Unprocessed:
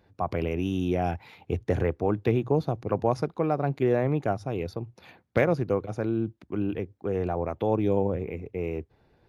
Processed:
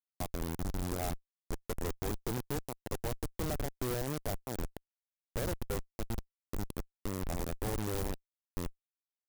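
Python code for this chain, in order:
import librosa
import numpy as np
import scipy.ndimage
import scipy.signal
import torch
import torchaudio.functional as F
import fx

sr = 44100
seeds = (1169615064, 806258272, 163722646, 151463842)

y = fx.highpass(x, sr, hz=610.0, slope=6)
y = fx.schmitt(y, sr, flips_db=-28.5)
y = fx.clock_jitter(y, sr, seeds[0], jitter_ms=0.09)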